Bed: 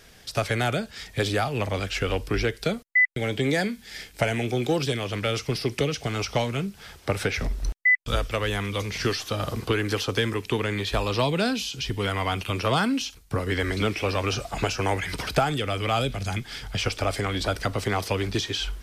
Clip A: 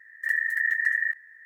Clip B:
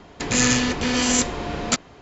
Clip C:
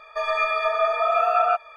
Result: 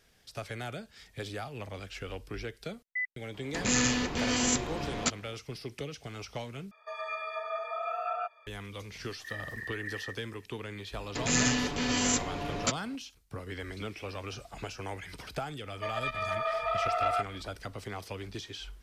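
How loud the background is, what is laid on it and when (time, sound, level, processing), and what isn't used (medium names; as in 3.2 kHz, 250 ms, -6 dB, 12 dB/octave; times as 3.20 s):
bed -14 dB
3.34 s: add B -8 dB
6.71 s: replace with C -14 dB + high-pass 190 Hz 24 dB/octave
9.01 s: add A -16 dB
10.95 s: add B -8.5 dB + comb 7 ms, depth 38%
15.66 s: add C -8 dB + transformer saturation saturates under 1.1 kHz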